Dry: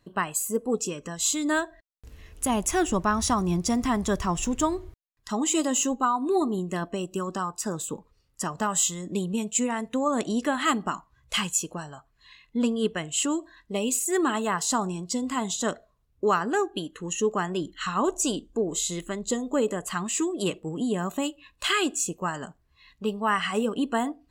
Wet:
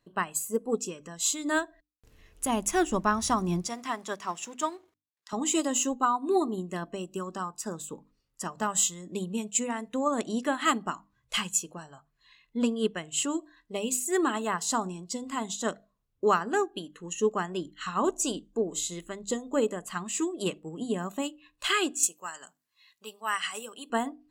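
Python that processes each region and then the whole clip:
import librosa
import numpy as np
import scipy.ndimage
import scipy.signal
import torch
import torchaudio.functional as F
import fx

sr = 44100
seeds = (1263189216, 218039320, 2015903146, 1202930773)

y = fx.chain(x, sr, fx.law_mismatch(coded='A'),
    fx.weighting(curve='A'), at=(3.66, 5.33))
y = fx.chain(y, sr, fx.highpass(hz=1300.0, slope=6),
    fx.high_shelf(hz=5200.0, db=12.0), at=(22.03, 23.9))
y = fx.peak_eq(y, sr, hz=63.0, db=-12.0, octaves=0.65)
y = fx.hum_notches(y, sr, base_hz=50, count=6)
y = fx.upward_expand(y, sr, threshold_db=-34.0, expansion=1.5)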